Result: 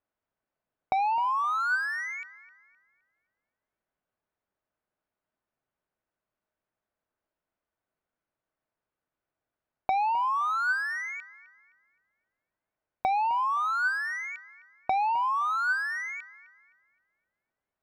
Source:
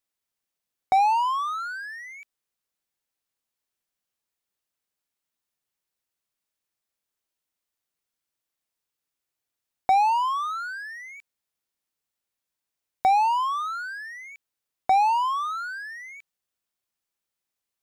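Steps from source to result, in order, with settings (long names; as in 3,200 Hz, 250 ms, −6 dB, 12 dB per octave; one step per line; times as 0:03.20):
soft clipping −23.5 dBFS, distortion −9 dB
downward compressor, threshold −31 dBFS, peak gain reduction 6 dB
hollow resonant body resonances 630/1,500 Hz, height 6 dB
low-pass that shuts in the quiet parts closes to 1,400 Hz, open at −33.5 dBFS
on a send: delay with a low-pass on its return 259 ms, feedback 34%, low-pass 2,600 Hz, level −16 dB
on the sum: level +5.5 dB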